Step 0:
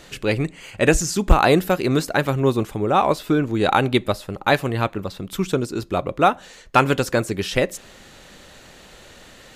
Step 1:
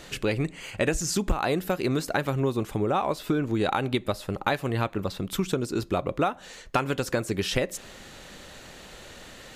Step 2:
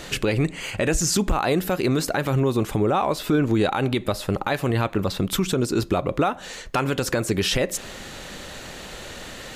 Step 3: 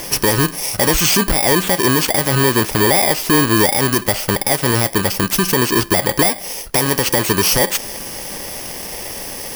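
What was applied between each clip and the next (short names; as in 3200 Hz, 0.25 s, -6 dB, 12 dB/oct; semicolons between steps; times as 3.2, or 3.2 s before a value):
compressor 6:1, threshold -22 dBFS, peak gain reduction 15 dB
limiter -20 dBFS, peak gain reduction 10.5 dB; gain +8 dB
FFT order left unsorted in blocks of 32 samples; overdrive pedal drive 9 dB, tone 7800 Hz, clips at -12 dBFS; gain +8.5 dB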